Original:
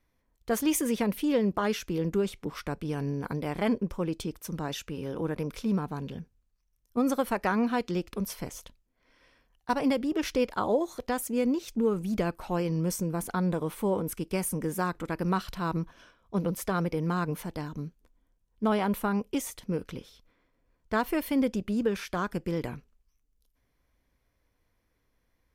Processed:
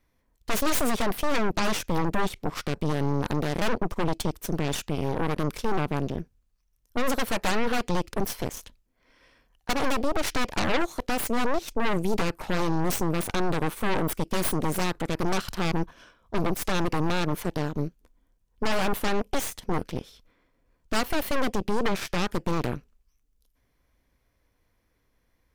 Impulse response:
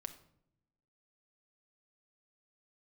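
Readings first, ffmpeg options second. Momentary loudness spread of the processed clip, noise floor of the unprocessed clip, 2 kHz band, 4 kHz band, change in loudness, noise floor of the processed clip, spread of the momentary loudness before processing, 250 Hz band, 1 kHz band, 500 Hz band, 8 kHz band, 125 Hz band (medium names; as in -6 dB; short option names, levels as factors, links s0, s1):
5 LU, -74 dBFS, +6.5 dB, +8.5 dB, +2.0 dB, -71 dBFS, 9 LU, -0.5 dB, +4.0 dB, +1.0 dB, +4.0 dB, +2.5 dB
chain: -af "aeval=exprs='0.211*(cos(1*acos(clip(val(0)/0.211,-1,1)))-cos(1*PI/2))+0.0211*(cos(3*acos(clip(val(0)/0.211,-1,1)))-cos(3*PI/2))+0.0266*(cos(5*acos(clip(val(0)/0.211,-1,1)))-cos(5*PI/2))+0.0106*(cos(7*acos(clip(val(0)/0.211,-1,1)))-cos(7*PI/2))+0.075*(cos(8*acos(clip(val(0)/0.211,-1,1)))-cos(8*PI/2))':c=same,aeval=exprs='0.355*sin(PI/2*2.24*val(0)/0.355)':c=same,volume=0.422"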